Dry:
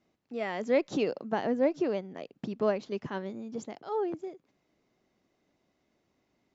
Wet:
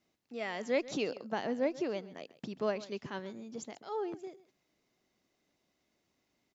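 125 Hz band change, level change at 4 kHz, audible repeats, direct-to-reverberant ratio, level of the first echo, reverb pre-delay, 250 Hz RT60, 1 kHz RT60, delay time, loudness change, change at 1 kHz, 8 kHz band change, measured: −6.0 dB, +1.0 dB, 1, no reverb audible, −18.0 dB, no reverb audible, no reverb audible, no reverb audible, 134 ms, −5.0 dB, −4.5 dB, can't be measured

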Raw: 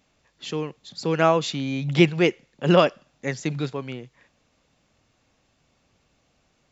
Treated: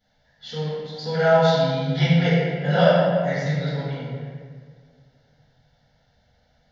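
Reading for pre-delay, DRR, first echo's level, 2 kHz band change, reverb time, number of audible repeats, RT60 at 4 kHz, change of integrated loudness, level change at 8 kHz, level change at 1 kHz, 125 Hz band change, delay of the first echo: 4 ms, −14.0 dB, no echo audible, +2.0 dB, 1.8 s, no echo audible, 1.1 s, +2.0 dB, can't be measured, +2.0 dB, +5.5 dB, no echo audible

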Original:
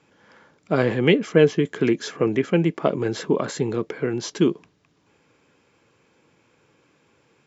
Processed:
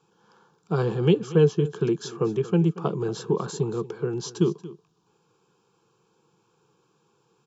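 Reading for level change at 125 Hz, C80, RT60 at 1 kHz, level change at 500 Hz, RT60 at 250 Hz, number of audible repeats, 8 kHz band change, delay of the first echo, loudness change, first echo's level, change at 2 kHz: +1.5 dB, no reverb audible, no reverb audible, −3.5 dB, no reverb audible, 1, can't be measured, 232 ms, −3.0 dB, −17.5 dB, −12.5 dB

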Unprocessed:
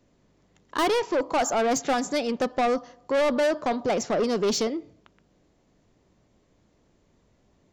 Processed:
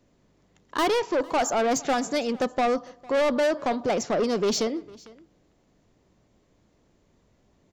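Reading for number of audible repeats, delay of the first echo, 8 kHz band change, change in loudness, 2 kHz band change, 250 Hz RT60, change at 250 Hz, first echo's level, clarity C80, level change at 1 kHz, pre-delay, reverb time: 1, 453 ms, 0.0 dB, 0.0 dB, 0.0 dB, no reverb audible, 0.0 dB, −23.0 dB, no reverb audible, 0.0 dB, no reverb audible, no reverb audible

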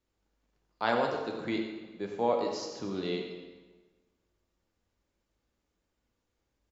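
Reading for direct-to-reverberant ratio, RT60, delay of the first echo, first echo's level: 1.0 dB, 1.3 s, 95 ms, −10.5 dB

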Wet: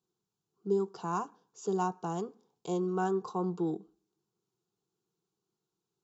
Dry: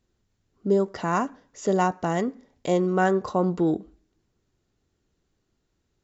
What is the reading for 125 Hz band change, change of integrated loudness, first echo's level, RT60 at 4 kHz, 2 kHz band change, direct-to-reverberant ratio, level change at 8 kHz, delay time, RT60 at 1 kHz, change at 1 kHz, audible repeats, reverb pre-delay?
−9.5 dB, −9.0 dB, no echo audible, no reverb audible, −15.0 dB, no reverb audible, can't be measured, no echo audible, no reverb audible, −8.5 dB, no echo audible, no reverb audible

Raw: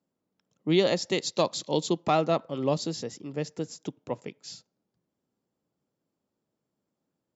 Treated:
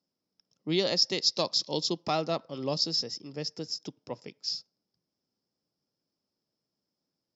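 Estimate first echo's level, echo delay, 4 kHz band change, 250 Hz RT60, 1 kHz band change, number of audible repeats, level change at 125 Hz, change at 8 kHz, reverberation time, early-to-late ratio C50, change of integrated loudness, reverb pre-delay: no echo audible, no echo audible, +6.5 dB, no reverb audible, −5.5 dB, no echo audible, −5.5 dB, can't be measured, no reverb audible, no reverb audible, −1.0 dB, no reverb audible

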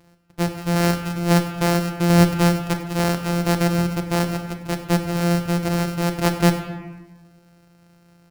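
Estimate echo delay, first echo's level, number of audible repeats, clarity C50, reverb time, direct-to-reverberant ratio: 98 ms, −16.0 dB, 1, 8.0 dB, 1.2 s, 4.5 dB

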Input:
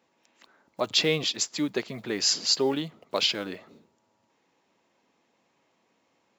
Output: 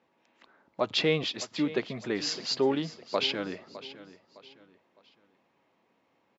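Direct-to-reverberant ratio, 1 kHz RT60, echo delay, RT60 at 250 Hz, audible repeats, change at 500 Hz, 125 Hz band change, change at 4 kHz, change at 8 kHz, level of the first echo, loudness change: no reverb audible, no reverb audible, 609 ms, no reverb audible, 3, 0.0 dB, 0.0 dB, −5.5 dB, −12.0 dB, −16.0 dB, −3.5 dB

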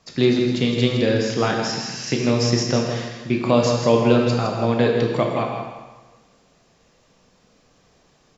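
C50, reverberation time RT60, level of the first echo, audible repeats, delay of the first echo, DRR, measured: 2.0 dB, 1.3 s, −7.5 dB, 1, 161 ms, −0.5 dB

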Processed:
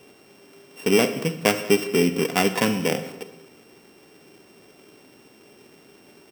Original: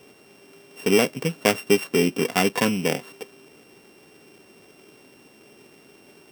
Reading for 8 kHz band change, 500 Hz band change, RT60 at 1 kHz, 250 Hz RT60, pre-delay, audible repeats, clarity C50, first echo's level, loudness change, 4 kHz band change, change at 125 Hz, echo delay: 0.0 dB, +0.5 dB, 0.90 s, 1.1 s, 33 ms, 1, 11.0 dB, −21.0 dB, +0.5 dB, 0.0 dB, +0.5 dB, 191 ms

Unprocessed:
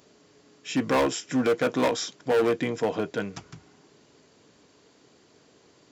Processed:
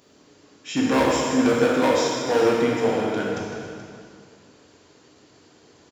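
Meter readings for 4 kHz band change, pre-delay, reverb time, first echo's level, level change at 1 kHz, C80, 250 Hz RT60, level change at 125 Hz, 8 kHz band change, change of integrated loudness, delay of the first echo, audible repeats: +4.5 dB, 18 ms, 2.2 s, −13.5 dB, +5.5 dB, 0.5 dB, 2.2 s, +4.5 dB, +4.5 dB, +5.0 dB, 428 ms, 1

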